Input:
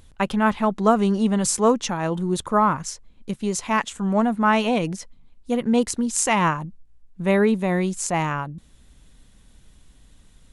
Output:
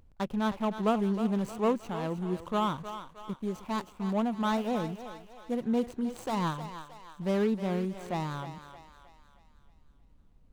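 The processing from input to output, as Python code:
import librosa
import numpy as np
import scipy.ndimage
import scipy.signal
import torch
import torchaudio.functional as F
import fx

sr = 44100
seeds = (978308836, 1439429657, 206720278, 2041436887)

y = scipy.ndimage.median_filter(x, 25, mode='constant')
y = fx.echo_thinned(y, sr, ms=312, feedback_pct=50, hz=460.0, wet_db=-9.5)
y = y * 10.0 ** (-8.5 / 20.0)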